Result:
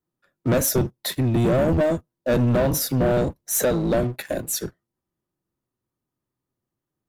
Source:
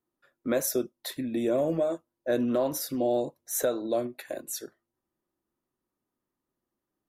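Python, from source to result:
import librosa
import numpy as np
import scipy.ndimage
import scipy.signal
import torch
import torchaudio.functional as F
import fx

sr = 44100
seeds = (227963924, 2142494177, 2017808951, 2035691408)

p1 = fx.octave_divider(x, sr, octaves=1, level_db=3.0)
p2 = fx.leveller(p1, sr, passes=2)
p3 = np.clip(p2, -10.0 ** (-27.0 / 20.0), 10.0 ** (-27.0 / 20.0))
y = p2 + (p3 * librosa.db_to_amplitude(-9.0))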